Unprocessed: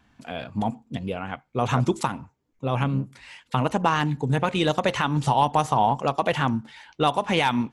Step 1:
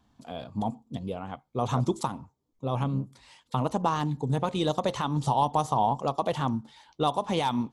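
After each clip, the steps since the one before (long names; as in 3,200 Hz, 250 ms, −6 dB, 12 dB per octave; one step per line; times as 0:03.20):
flat-topped bell 2,000 Hz −9.5 dB 1.2 octaves
level −4 dB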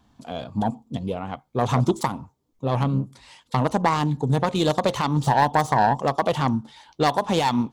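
phase distortion by the signal itself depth 0.14 ms
level +6 dB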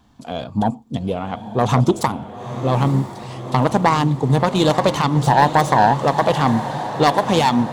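feedback delay with all-pass diffusion 926 ms, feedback 62%, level −11 dB
level +5 dB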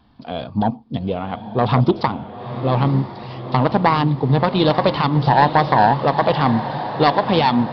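downsampling to 11,025 Hz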